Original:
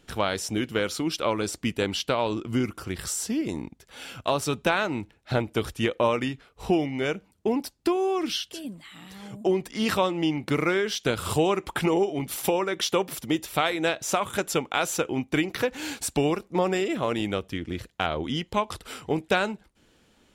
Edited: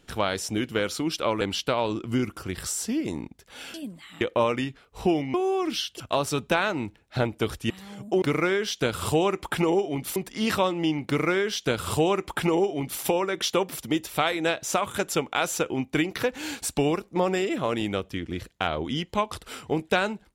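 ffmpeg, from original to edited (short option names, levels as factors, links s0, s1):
-filter_complex "[0:a]asplit=9[s0][s1][s2][s3][s4][s5][s6][s7][s8];[s0]atrim=end=1.412[s9];[s1]atrim=start=1.818:end=4.152[s10];[s2]atrim=start=8.558:end=9.032[s11];[s3]atrim=start=5.848:end=6.982[s12];[s4]atrim=start=7.898:end=8.562[s13];[s5]atrim=start=4.148:end=5.852[s14];[s6]atrim=start=9.028:end=9.552[s15];[s7]atrim=start=10.458:end=12.402[s16];[s8]atrim=start=9.548[s17];[s9][s10]acrossfade=d=0.004:c1=hsin:c2=hsin[s18];[s18][s11]acrossfade=d=0.004:c1=hsin:c2=hsin[s19];[s19][s12]acrossfade=d=0.004:c1=hsin:c2=hsin[s20];[s20][s13]acrossfade=d=0.004:c1=hsin:c2=hsin[s21];[s21][s14]acrossfade=d=0.004:c1=hsin:c2=hsin[s22];[s22][s15]acrossfade=d=0.004:c1=hsin:c2=hsin[s23];[s23][s16]acrossfade=d=0.004:c1=hsin:c2=hsin[s24];[s24][s17]acrossfade=d=0.004:c1=hsin:c2=hsin"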